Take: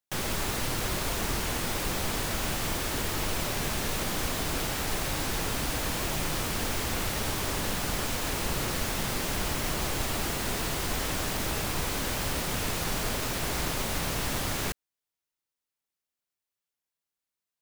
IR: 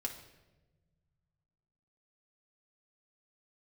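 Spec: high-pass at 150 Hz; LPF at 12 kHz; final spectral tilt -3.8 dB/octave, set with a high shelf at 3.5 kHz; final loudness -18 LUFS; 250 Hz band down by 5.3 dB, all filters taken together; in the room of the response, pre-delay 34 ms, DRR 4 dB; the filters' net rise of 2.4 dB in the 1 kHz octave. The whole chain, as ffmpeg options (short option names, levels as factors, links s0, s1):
-filter_complex "[0:a]highpass=150,lowpass=12000,equalizer=f=250:t=o:g=-6.5,equalizer=f=1000:t=o:g=4,highshelf=f=3500:g=-7,asplit=2[s0][s1];[1:a]atrim=start_sample=2205,adelay=34[s2];[s1][s2]afir=irnorm=-1:irlink=0,volume=0.631[s3];[s0][s3]amix=inputs=2:normalize=0,volume=4.73"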